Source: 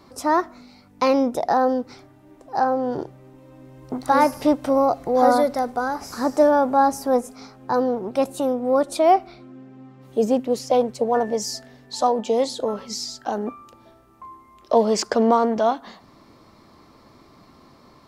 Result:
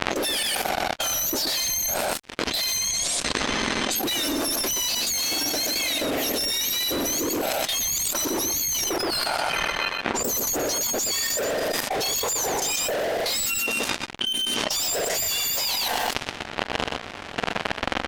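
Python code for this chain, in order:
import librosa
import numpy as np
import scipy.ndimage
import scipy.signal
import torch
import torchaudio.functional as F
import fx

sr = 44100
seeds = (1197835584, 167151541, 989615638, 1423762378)

y = fx.octave_mirror(x, sr, pivot_hz=1800.0)
y = fx.high_shelf(y, sr, hz=4200.0, db=-4.5)
y = fx.fuzz(y, sr, gain_db=44.0, gate_db=-51.0)
y = fx.bass_treble(y, sr, bass_db=-6, treble_db=-10, at=(8.85, 10.24))
y = fx.env_lowpass(y, sr, base_hz=2400.0, full_db=-18.5)
y = fx.lowpass(y, sr, hz=9400.0, slope=24, at=(2.77, 3.96))
y = fx.level_steps(y, sr, step_db=17)
y = y + 10.0 ** (-8.0 / 20.0) * np.pad(y, (int(124 * sr / 1000.0), 0))[:len(y)]
y = fx.env_flatten(y, sr, amount_pct=100)
y = F.gain(torch.from_numpy(y), -10.0).numpy()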